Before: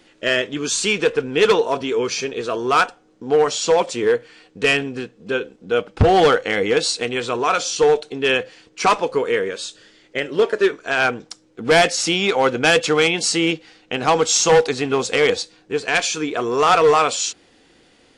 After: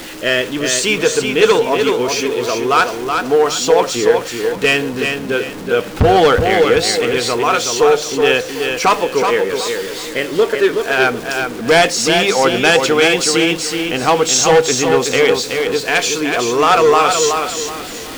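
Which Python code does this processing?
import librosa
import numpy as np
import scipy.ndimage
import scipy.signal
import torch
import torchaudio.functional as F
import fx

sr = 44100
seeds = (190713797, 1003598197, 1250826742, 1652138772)

y = x + 0.5 * 10.0 ** (-28.0 / 20.0) * np.sign(x)
y = fx.hum_notches(y, sr, base_hz=50, count=4)
y = fx.echo_feedback(y, sr, ms=374, feedback_pct=31, wet_db=-5.5)
y = y * 10.0 ** (2.5 / 20.0)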